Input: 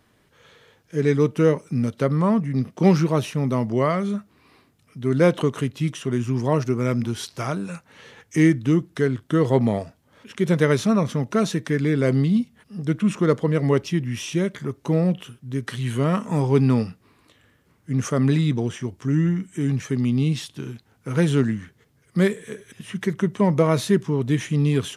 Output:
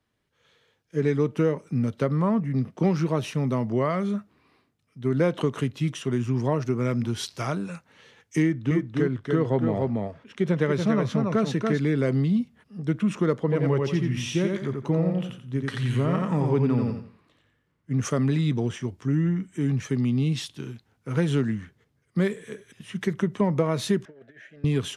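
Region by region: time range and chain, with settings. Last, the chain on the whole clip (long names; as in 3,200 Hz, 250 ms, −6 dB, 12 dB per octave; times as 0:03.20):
0:08.42–0:11.79: high-shelf EQ 6,800 Hz −10.5 dB + single-tap delay 285 ms −5 dB
0:13.41–0:17.91: high-shelf EQ 5,700 Hz −6 dB + repeating echo 87 ms, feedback 31%, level −3.5 dB
0:24.05–0:24.64: mu-law and A-law mismatch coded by mu + pair of resonant band-passes 1,000 Hz, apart 1.4 octaves + compressor whose output falls as the input rises −42 dBFS, ratio −0.5
whole clip: high-shelf EQ 7,400 Hz −8.5 dB; downward compressor, threshold −19 dBFS; multiband upward and downward expander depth 40%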